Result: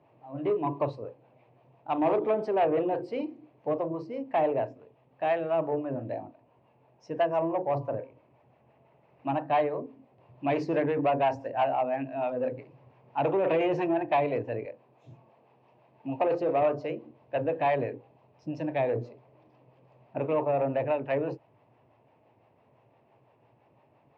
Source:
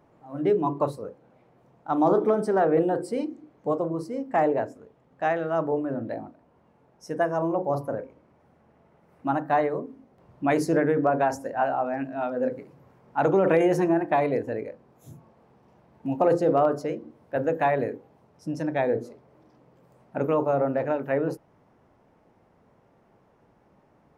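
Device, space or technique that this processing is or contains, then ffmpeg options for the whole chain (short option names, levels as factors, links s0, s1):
guitar amplifier with harmonic tremolo: -filter_complex "[0:a]acrossover=split=510[s0][s1];[s0]aeval=exprs='val(0)*(1-0.5/2+0.5/2*cos(2*PI*5.9*n/s))':c=same[s2];[s1]aeval=exprs='val(0)*(1-0.5/2-0.5/2*cos(2*PI*5.9*n/s))':c=same[s3];[s2][s3]amix=inputs=2:normalize=0,asoftclip=type=tanh:threshold=0.119,highpass=100,equalizer=f=120:t=q:w=4:g=10,equalizer=f=190:t=q:w=4:g=-9,equalizer=f=640:t=q:w=4:g=5,equalizer=f=950:t=q:w=4:g=4,equalizer=f=1400:t=q:w=4:g=-7,equalizer=f=2600:t=q:w=4:g=10,lowpass=f=4400:w=0.5412,lowpass=f=4400:w=1.3066,asettb=1/sr,asplit=3[s4][s5][s6];[s4]atrim=end=14.654[s7];[s5]atrim=start=14.65:end=16.62,asetpts=PTS-STARTPTS,afade=t=in:d=0.004:c=qsin,afade=t=out:st=1.966:d=0.004:c=qsin,highpass=f=200:p=1[s8];[s6]atrim=start=16.616[s9];[s7][s8]acrossfade=d=0.004:c1=hsin:c2=qsin[s10];[s10][s9]acrossfade=d=0.004:c1=qsin:c2=hsin,volume=0.841"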